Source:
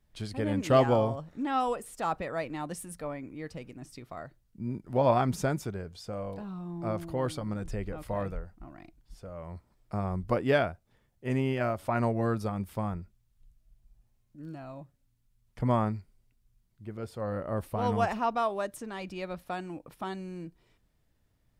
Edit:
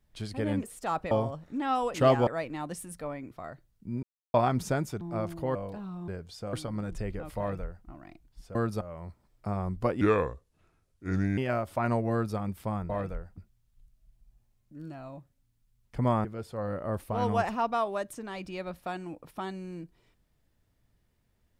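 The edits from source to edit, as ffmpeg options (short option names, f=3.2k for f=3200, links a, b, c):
-filter_complex "[0:a]asplit=19[a][b][c][d][e][f][g][h][i][j][k][l][m][n][o][p][q][r][s];[a]atrim=end=0.632[t];[b]atrim=start=1.788:end=2.272[u];[c]atrim=start=0.958:end=1.792[v];[d]atrim=start=0.628:end=0.962[w];[e]atrim=start=2.268:end=3.312[x];[f]atrim=start=4.038:end=4.76,asetpts=PTS-STARTPTS,afade=t=out:st=0.718:d=0.004:c=hsin[y];[g]atrim=start=4.76:end=5.07,asetpts=PTS-STARTPTS,volume=0[z];[h]atrim=start=5.07:end=5.742,asetpts=PTS-STARTPTS,afade=t=in:d=0.004:c=hsin[aa];[i]atrim=start=6.718:end=7.262[ab];[j]atrim=start=6.188:end=6.722[ac];[k]atrim=start=5.738:end=6.192[ad];[l]atrim=start=7.258:end=9.282[ae];[m]atrim=start=12.228:end=12.492[af];[n]atrim=start=9.278:end=10.484[ag];[o]atrim=start=10.48:end=11.49,asetpts=PTS-STARTPTS,asetrate=32634,aresample=44100[ah];[p]atrim=start=11.486:end=13.012[ai];[q]atrim=start=8.108:end=8.592[aj];[r]atrim=start=13.008:end=15.882[ak];[s]atrim=start=16.878[al];[t][u]acrossfade=d=0.004:c1=hsin:c2=hsin[am];[am][v]acrossfade=d=0.004:c1=hsin:c2=hsin[an];[an][w]acrossfade=d=0.004:c1=hsin:c2=hsin[ao];[ao][x]acrossfade=d=0.004:c1=hsin:c2=hsin[ap];[y][z][aa]concat=n=3:v=0:a=1[aq];[ap][aq]acrossfade=d=0.004:c1=hsin:c2=hsin[ar];[ar][ab]acrossfade=d=0.004:c1=hsin:c2=hsin[as];[as][ac]acrossfade=d=0.004:c1=hsin:c2=hsin[at];[at][ad]acrossfade=d=0.004:c1=hsin:c2=hsin[au];[au][ae]acrossfade=d=0.004:c1=hsin:c2=hsin[av];[av][af]acrossfade=d=0.004:c1=hsin:c2=hsin[aw];[aw][ag]acrossfade=d=0.004:c1=hsin:c2=hsin[ax];[ax][ah]acrossfade=d=0.004:c1=hsin:c2=hsin[ay];[ay][ai]acrossfade=d=0.004:c1=hsin:c2=hsin[az];[az][aj]acrossfade=d=0.004:c1=hsin:c2=hsin[ba];[ba][ak]acrossfade=d=0.004:c1=hsin:c2=hsin[bb];[bb][al]acrossfade=d=0.004:c1=hsin:c2=hsin"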